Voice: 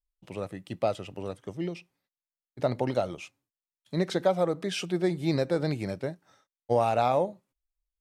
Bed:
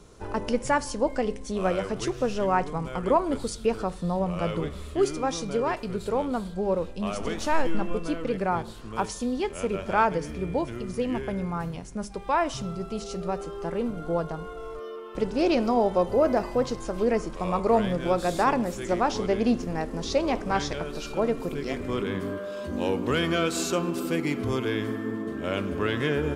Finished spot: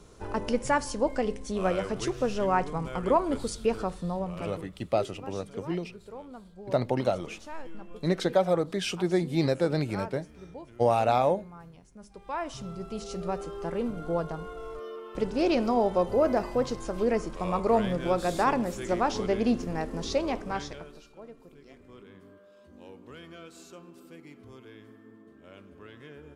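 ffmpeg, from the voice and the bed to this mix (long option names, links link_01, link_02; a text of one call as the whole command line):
ffmpeg -i stem1.wav -i stem2.wav -filter_complex "[0:a]adelay=4100,volume=1dB[link_01];[1:a]volume=13dB,afade=type=out:start_time=3.8:duration=0.91:silence=0.177828,afade=type=in:start_time=11.99:duration=1.23:silence=0.188365,afade=type=out:start_time=20.05:duration=1.04:silence=0.105925[link_02];[link_01][link_02]amix=inputs=2:normalize=0" out.wav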